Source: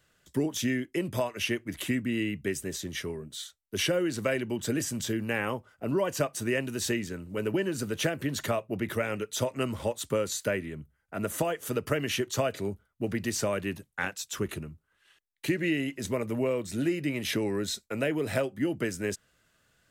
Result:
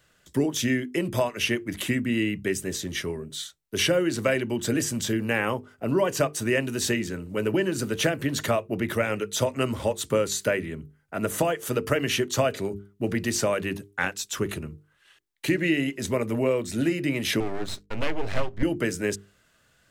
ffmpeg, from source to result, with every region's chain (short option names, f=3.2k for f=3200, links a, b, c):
-filter_complex "[0:a]asettb=1/sr,asplit=3[a][b][c];[a]atrim=end=17.404[d];[b]atrim=start=17.4:end=18.63,asetpts=PTS-STARTPTS,afade=t=in:d=0.004:c=qsin,afade=t=out:st=1.226:d=0.004:c=qsin,lowpass=4.9k,aeval=exprs='max(val(0),0)':c=same,asubboost=boost=6:cutoff=150[e];[c]atrim=start=18.626[f];[d][e]acrossfade=d=0.004:c1=hsin:c2=qsin[g];[g][f]acrossfade=d=0.004:c1=qsin:c2=hsin,equalizer=f=14k:t=o:w=0.77:g=-2,bandreject=f=50:t=h:w=6,bandreject=f=100:t=h:w=6,bandreject=f=150:t=h:w=6,bandreject=f=200:t=h:w=6,bandreject=f=250:t=h:w=6,bandreject=f=300:t=h:w=6,bandreject=f=350:t=h:w=6,bandreject=f=400:t=h:w=6,bandreject=f=450:t=h:w=6,volume=5dB"